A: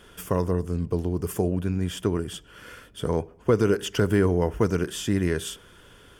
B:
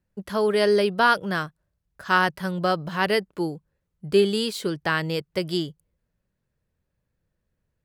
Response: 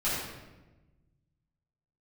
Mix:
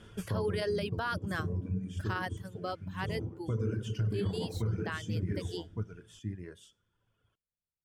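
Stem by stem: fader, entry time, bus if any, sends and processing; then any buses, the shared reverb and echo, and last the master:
+1.5 dB, 0.00 s, send -21.5 dB, echo send -15.5 dB, LPF 8800 Hz 12 dB/oct; bell 110 Hz +12 dB 2.1 oct; resonator 110 Hz, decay 0.38 s, harmonics all, mix 70%; auto duck -13 dB, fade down 1.55 s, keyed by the second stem
2 s -5.5 dB -> 2.39 s -13.5 dB, 0.00 s, no send, no echo send, dry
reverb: on, RT60 1.1 s, pre-delay 5 ms
echo: echo 1.163 s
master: reverb removal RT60 1.7 s; limiter -24.5 dBFS, peak gain reduction 12 dB

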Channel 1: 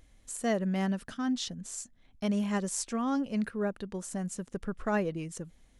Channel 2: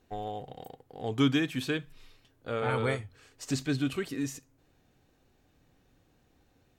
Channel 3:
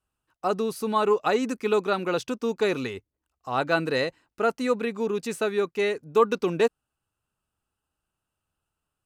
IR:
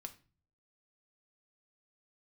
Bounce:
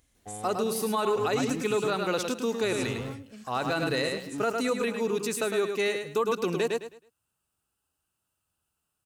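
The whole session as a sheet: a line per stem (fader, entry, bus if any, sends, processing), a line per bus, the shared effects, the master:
-9.0 dB, 0.00 s, send -5.5 dB, no echo send, compressor, threshold -30 dBFS, peak gain reduction 6.5 dB; auto duck -9 dB, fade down 0.25 s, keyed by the third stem
-3.5 dB, 0.15 s, no send, echo send -19.5 dB, slew limiter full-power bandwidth 11 Hz
-2.0 dB, 0.00 s, no send, echo send -7 dB, dry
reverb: on, RT60 0.40 s, pre-delay 4 ms
echo: feedback echo 0.106 s, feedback 27%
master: HPF 45 Hz; high shelf 4400 Hz +10 dB; limiter -18 dBFS, peak gain reduction 8 dB

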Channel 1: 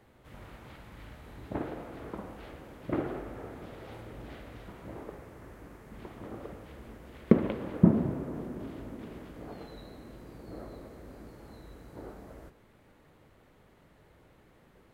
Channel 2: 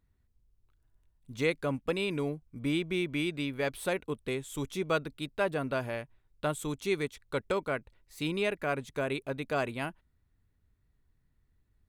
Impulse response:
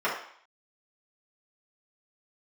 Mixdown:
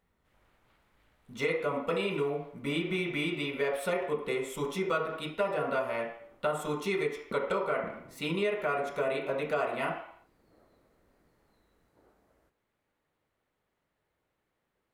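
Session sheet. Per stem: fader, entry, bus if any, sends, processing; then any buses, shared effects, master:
-15.5 dB, 0.00 s, no send, low shelf 460 Hz -9 dB
-3.5 dB, 0.00 s, send -3.5 dB, notch 1600 Hz, Q 7.2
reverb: on, RT60 0.60 s, pre-delay 3 ms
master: compressor 4:1, threshold -27 dBFS, peak gain reduction 8.5 dB

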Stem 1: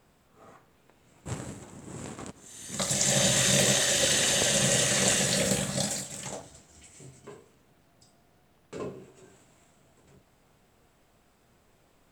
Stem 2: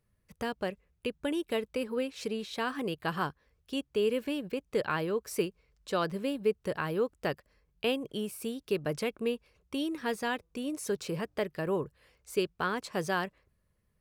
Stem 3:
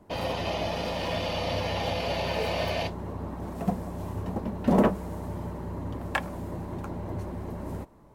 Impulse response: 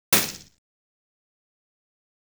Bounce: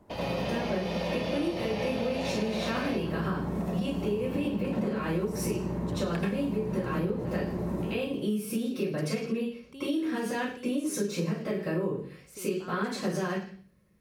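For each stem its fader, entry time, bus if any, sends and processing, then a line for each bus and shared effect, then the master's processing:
off
-9.0 dB, 0.00 s, send -3.5 dB, compressor, threshold -31 dBFS, peak gain reduction 9 dB; limiter -29 dBFS, peak gain reduction 9.5 dB
-3.0 dB, 0.00 s, send -16 dB, compressor, threshold -31 dBFS, peak gain reduction 13.5 dB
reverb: on, RT60 0.45 s, pre-delay 76 ms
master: compressor, threshold -26 dBFS, peak gain reduction 9.5 dB

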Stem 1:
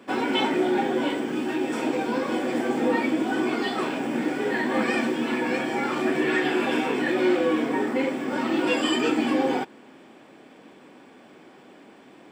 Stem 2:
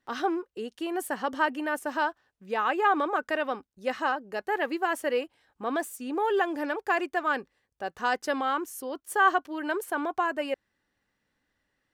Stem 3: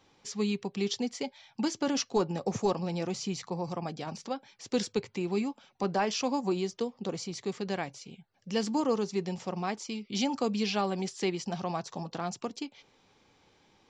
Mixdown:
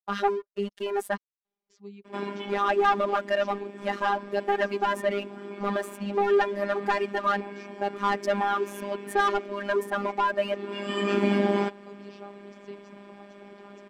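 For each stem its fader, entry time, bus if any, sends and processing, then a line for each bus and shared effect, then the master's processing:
+2.5 dB, 2.05 s, no send, comb 3.2 ms; auto duck -16 dB, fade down 0.50 s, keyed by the second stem
-3.0 dB, 0.00 s, muted 1.17–2.39, no send, expander -50 dBFS; reverb removal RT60 1.3 s; sample leveller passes 3
-15.5 dB, 1.45 s, no send, gate -59 dBFS, range -8 dB; reverb removal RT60 0.62 s; bell 410 Hz +5 dB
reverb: off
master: LPF 2600 Hz 6 dB/oct; robotiser 201 Hz

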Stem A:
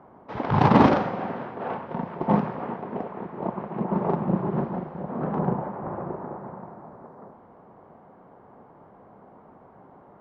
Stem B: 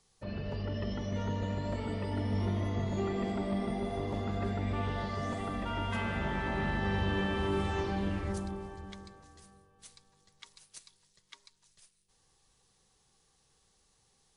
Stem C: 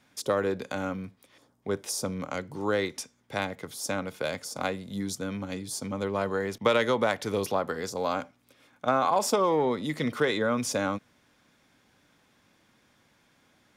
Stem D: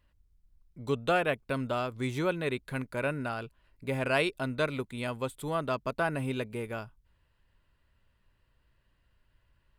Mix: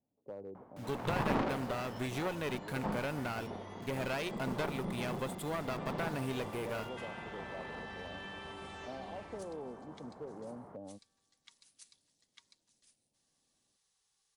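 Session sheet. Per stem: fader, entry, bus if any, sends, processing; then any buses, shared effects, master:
-2.5 dB, 0.55 s, no send, auto duck -10 dB, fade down 0.25 s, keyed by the fourth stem
-14.0 dB, 1.05 s, no send, tilt shelf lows -7.5 dB, about 780 Hz
-18.5 dB, 0.00 s, no send, steep low-pass 800 Hz 36 dB/oct
+0.5 dB, 0.00 s, no send, low shelf 100 Hz -10 dB; compressor, threshold -31 dBFS, peak gain reduction 8.5 dB; bit-crush 9-bit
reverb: off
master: one-sided clip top -38.5 dBFS

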